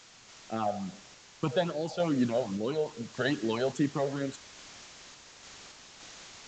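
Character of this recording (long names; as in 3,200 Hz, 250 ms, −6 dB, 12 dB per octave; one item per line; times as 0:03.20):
phaser sweep stages 8, 2.4 Hz, lowest notch 300–1,000 Hz
a quantiser's noise floor 8 bits, dither triangular
sample-and-hold tremolo
mu-law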